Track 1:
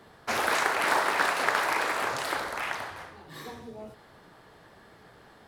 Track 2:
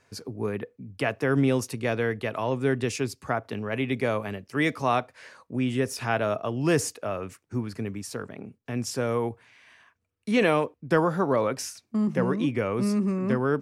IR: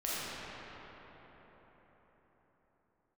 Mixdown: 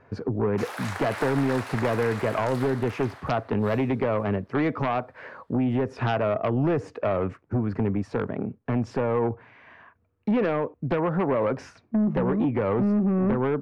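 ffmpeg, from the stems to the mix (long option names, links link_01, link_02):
-filter_complex "[0:a]highpass=390,agate=range=-33dB:threshold=-48dB:ratio=3:detection=peak,adelay=300,volume=-10dB,asplit=2[link_01][link_02];[link_02]volume=-19dB[link_03];[1:a]lowpass=1300,acompressor=threshold=-28dB:ratio=20,aeval=exprs='0.133*(cos(1*acos(clip(val(0)/0.133,-1,1)))-cos(1*PI/2))+0.0596*(cos(5*acos(clip(val(0)/0.133,-1,1)))-cos(5*PI/2))':channel_layout=same,volume=1dB[link_04];[2:a]atrim=start_sample=2205[link_05];[link_03][link_05]afir=irnorm=-1:irlink=0[link_06];[link_01][link_04][link_06]amix=inputs=3:normalize=0"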